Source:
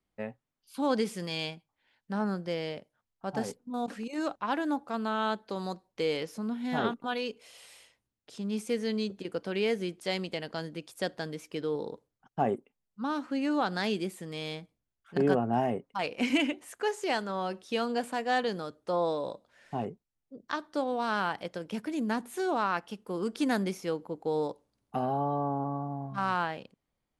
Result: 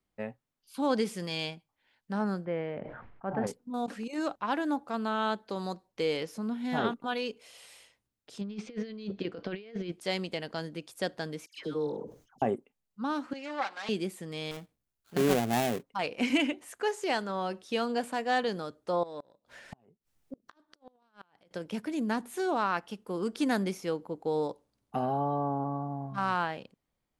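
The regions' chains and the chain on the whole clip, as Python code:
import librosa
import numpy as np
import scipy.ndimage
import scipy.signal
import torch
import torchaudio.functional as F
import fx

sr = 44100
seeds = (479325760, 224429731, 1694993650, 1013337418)

y = fx.chain(x, sr, fx.lowpass(hz=2100.0, slope=24),
    fx.sustainer(db_per_s=39.0), at=(2.45, 3.47))
y = fx.chain(y, sr, fx.lowpass(hz=4700.0, slope=24),
    fx.notch(hz=890.0, q=9.7),
    fx.over_compress(threshold_db=-36.0, ratio=-0.5), at=(8.41, 9.92))
y = fx.chain(y, sr, fx.peak_eq(hz=6300.0, db=8.0, octaves=0.21),
    fx.dispersion(late='lows', ms=123.0, hz=1500.0),
    fx.sustainer(db_per_s=140.0), at=(11.46, 12.42))
y = fx.chain(y, sr, fx.lower_of_two(delay_ms=3.7),
    fx.bandpass_edges(low_hz=540.0, high_hz=5200.0),
    fx.band_widen(depth_pct=40), at=(13.33, 13.89))
y = fx.chain(y, sr, fx.dead_time(dead_ms=0.24),
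    fx.high_shelf(hz=7600.0, db=6.0), at=(14.51, 15.83))
y = fx.chain(y, sr, fx.transient(attack_db=3, sustain_db=7),
    fx.over_compress(threshold_db=-35.0, ratio=-0.5),
    fx.gate_flip(shuts_db=-30.0, range_db=-31), at=(19.03, 21.51))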